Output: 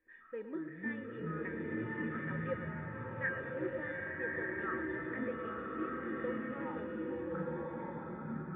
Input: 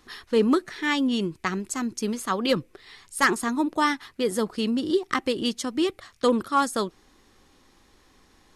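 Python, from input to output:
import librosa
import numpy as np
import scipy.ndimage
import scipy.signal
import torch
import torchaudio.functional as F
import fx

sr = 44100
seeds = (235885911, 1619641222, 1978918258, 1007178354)

y = fx.formant_cascade(x, sr, vowel='e')
y = fx.low_shelf(y, sr, hz=150.0, db=9.0)
y = fx.comb_fb(y, sr, f0_hz=320.0, decay_s=0.33, harmonics='odd', damping=0.0, mix_pct=90)
y = fx.echo_pitch(y, sr, ms=89, semitones=-6, count=3, db_per_echo=-3.0)
y = fx.peak_eq(y, sr, hz=1600.0, db=11.5, octaves=0.79)
y = y + 10.0 ** (-12.5 / 20.0) * np.pad(y, (int(112 * sr / 1000.0), 0))[:len(y)]
y = fx.rev_bloom(y, sr, seeds[0], attack_ms=1260, drr_db=-3.0)
y = y * librosa.db_to_amplitude(4.5)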